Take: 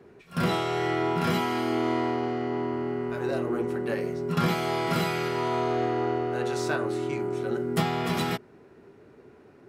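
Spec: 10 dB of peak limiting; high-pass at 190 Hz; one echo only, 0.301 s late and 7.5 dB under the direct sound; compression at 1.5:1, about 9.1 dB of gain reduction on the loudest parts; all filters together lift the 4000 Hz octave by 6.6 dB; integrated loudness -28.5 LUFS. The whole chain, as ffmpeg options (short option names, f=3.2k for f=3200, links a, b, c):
-af "highpass=190,equalizer=f=4k:t=o:g=8.5,acompressor=threshold=-48dB:ratio=1.5,alimiter=level_in=7.5dB:limit=-24dB:level=0:latency=1,volume=-7.5dB,aecho=1:1:301:0.422,volume=11.5dB"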